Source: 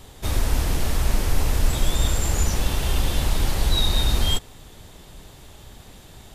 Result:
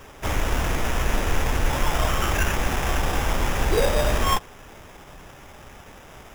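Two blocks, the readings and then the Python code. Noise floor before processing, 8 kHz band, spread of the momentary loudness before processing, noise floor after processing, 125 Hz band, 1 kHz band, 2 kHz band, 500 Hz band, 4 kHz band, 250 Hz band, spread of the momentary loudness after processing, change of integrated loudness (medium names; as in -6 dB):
-46 dBFS, -3.0 dB, 3 LU, -46 dBFS, -2.5 dB, +7.5 dB, +6.5 dB, +7.0 dB, -4.5 dB, +1.0 dB, 4 LU, -0.5 dB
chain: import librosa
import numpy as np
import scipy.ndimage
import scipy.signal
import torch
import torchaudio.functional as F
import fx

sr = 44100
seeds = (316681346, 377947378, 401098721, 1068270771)

y = fx.low_shelf(x, sr, hz=330.0, db=-7.5)
y = fx.sample_hold(y, sr, seeds[0], rate_hz=4300.0, jitter_pct=0)
y = y * 10.0 ** (4.0 / 20.0)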